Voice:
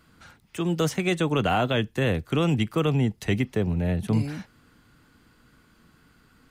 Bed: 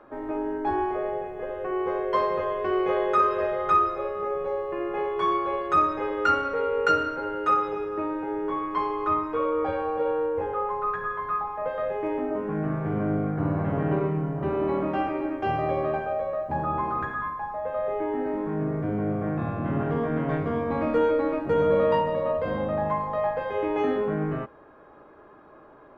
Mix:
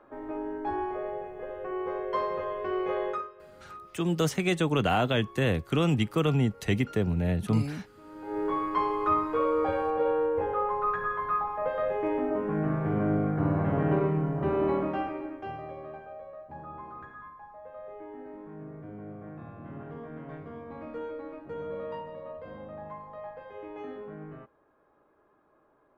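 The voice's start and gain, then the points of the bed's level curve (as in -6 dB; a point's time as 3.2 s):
3.40 s, -2.0 dB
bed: 3.09 s -5.5 dB
3.33 s -25.5 dB
7.98 s -25.5 dB
8.39 s -0.5 dB
14.69 s -0.5 dB
15.75 s -15.5 dB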